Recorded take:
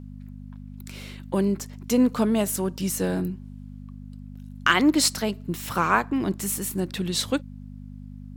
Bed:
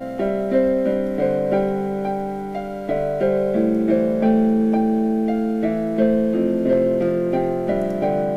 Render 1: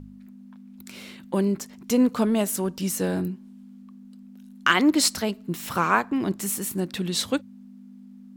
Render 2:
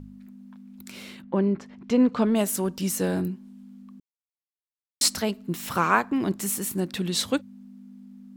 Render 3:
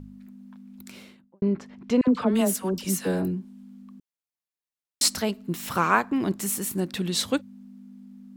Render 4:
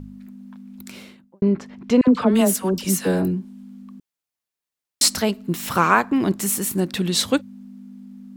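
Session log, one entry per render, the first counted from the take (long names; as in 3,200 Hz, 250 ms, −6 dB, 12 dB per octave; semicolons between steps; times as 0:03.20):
hum removal 50 Hz, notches 3
0:01.21–0:02.34: low-pass filter 1,800 Hz → 4,800 Hz; 0:04.00–0:05.01: silence
0:00.77–0:01.42: fade out and dull; 0:02.01–0:03.45: all-pass dispersion lows, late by 66 ms, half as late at 900 Hz
level +5.5 dB; brickwall limiter −3 dBFS, peak gain reduction 2 dB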